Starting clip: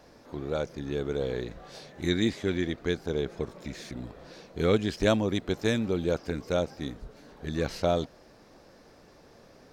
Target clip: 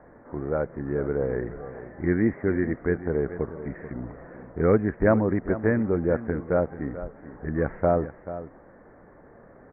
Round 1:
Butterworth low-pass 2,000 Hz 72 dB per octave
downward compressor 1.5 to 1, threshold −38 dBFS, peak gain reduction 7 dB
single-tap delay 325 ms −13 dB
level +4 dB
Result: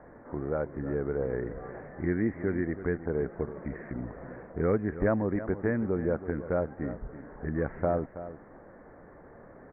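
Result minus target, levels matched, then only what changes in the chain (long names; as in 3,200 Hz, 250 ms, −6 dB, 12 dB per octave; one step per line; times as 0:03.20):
downward compressor: peak gain reduction +7 dB; echo 111 ms early
change: single-tap delay 436 ms −13 dB
remove: downward compressor 1.5 to 1, threshold −38 dBFS, peak gain reduction 7 dB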